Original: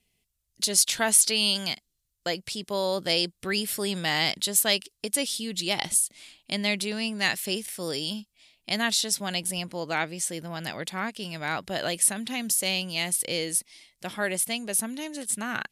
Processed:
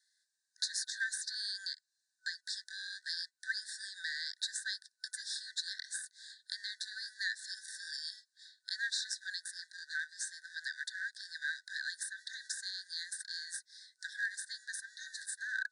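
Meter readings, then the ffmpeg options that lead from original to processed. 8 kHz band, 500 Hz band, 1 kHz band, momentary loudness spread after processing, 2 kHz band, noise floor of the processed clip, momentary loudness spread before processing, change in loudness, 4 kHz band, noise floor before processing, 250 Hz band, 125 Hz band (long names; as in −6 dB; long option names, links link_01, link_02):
−17.0 dB, below −40 dB, below −40 dB, 8 LU, −7.0 dB, −85 dBFS, 12 LU, −13.5 dB, −11.5 dB, −77 dBFS, below −40 dB, below −40 dB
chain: -filter_complex "[0:a]asplit=2[link_01][link_02];[link_02]acrusher=samples=41:mix=1:aa=0.000001,volume=-6dB[link_03];[link_01][link_03]amix=inputs=2:normalize=0,acompressor=threshold=-37dB:ratio=4,asuperstop=centerf=2600:order=12:qfactor=1.4,aemphasis=mode=reproduction:type=riaa,afftfilt=real='re*between(b*sr/4096,1500,10000)':imag='im*between(b*sr/4096,1500,10000)':win_size=4096:overlap=0.75,volume=11.5dB"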